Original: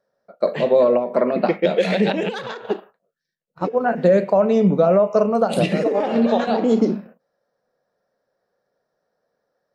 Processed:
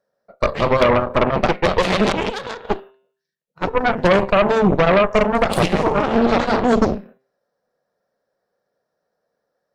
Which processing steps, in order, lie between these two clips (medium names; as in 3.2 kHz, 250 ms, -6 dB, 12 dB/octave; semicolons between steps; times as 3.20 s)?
de-hum 131.4 Hz, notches 30; Chebyshev shaper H 6 -9 dB, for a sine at -5 dBFS; trim -1 dB